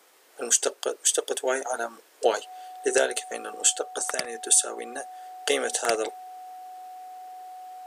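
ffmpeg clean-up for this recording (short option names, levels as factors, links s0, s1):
-af "bandreject=f=740:w=30"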